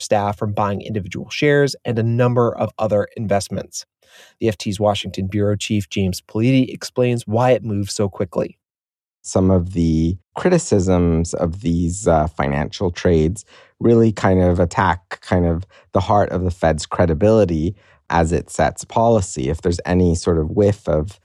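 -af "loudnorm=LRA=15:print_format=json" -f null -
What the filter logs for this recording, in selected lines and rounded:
"input_i" : "-18.6",
"input_tp" : "-1.9",
"input_lra" : "2.5",
"input_thresh" : "-28.8",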